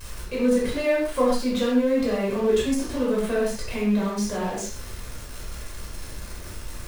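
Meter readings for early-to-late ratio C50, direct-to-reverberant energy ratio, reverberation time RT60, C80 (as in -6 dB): 1.0 dB, -6.5 dB, not exponential, 4.5 dB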